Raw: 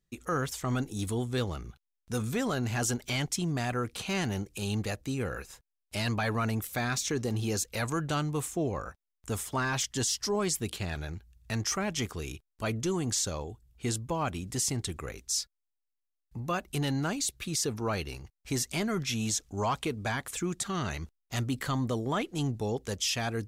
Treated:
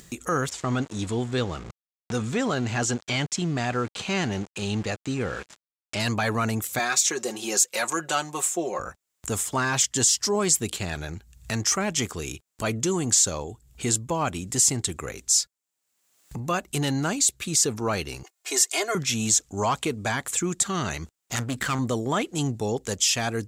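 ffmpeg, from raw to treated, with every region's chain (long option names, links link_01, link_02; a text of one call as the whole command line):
ffmpeg -i in.wav -filter_complex "[0:a]asettb=1/sr,asplit=3[link_01][link_02][link_03];[link_01]atrim=end=0.494[link_04];[link_02]atrim=start=0.49:end=6,asetpts=PTS-STARTPTS,afade=type=in:duration=0.004:curve=qsin,afade=type=out:start_time=5.506:duration=0.004:curve=qsin,aeval=exprs='val(0)*gte(abs(val(0)),0.00794)':channel_layout=same,lowpass=5000[link_05];[link_03]atrim=start=5.996[link_06];[link_04][link_05]acrossfade=duration=0.004:curve1=hsin:curve2=qsin[link_07];[link_07][link_06]acrossfade=duration=0.004:curve1=qsin:curve2=hsin,asettb=1/sr,asplit=3[link_08][link_09][link_10];[link_08]atrim=end=6.794[link_11];[link_09]atrim=start=6.79:end=8.79,asetpts=PTS-STARTPTS,afade=type=in:duration=0.004:curve=qsin,afade=type=out:start_time=1.996:duration=0.004:curve=qsin,highpass=410,aecho=1:1:5.5:0.69,atrim=end_sample=88200[link_12];[link_10]atrim=start=8.786[link_13];[link_11][link_12]acrossfade=duration=0.004:curve1=hsin:curve2=qsin[link_14];[link_14][link_13]acrossfade=duration=0.004:curve1=qsin:curve2=hsin,asettb=1/sr,asplit=3[link_15][link_16][link_17];[link_15]atrim=end=18.234[link_18];[link_16]atrim=start=18.23:end=18.95,asetpts=PTS-STARTPTS,afade=type=in:duration=0.004:curve=qsin,afade=type=out:start_time=0.716:duration=0.004:curve=qsin,highpass=frequency=420:width=0.5412,highpass=frequency=420:width=1.3066,aecho=1:1:2.8:0.89,atrim=end_sample=31752[link_19];[link_17]atrim=start=18.946[link_20];[link_18][link_19]acrossfade=duration=0.004:curve1=hsin:curve2=qsin[link_21];[link_21][link_20]acrossfade=duration=0.004:curve1=qsin:curve2=hsin,asettb=1/sr,asplit=3[link_22][link_23][link_24];[link_22]atrim=end=21.354[link_25];[link_23]atrim=start=21.35:end=21.79,asetpts=PTS-STARTPTS,afade=type=in:duration=0.004:curve=qsin,afade=type=out:start_time=0.436:duration=0.004:curve=qsin,equalizer=frequency=1500:width=1.7:gain=10,aeval=exprs='clip(val(0),-1,0.0119)':channel_layout=same[link_26];[link_24]atrim=start=21.786[link_27];[link_25][link_26]acrossfade=duration=0.004:curve1=hsin:curve2=qsin[link_28];[link_28][link_27]acrossfade=duration=0.004:curve1=qsin:curve2=hsin,highpass=frequency=110:poles=1,equalizer=frequency=7400:width=2.9:gain=8.5,acompressor=mode=upward:threshold=-35dB:ratio=2.5,volume=5.5dB" out.wav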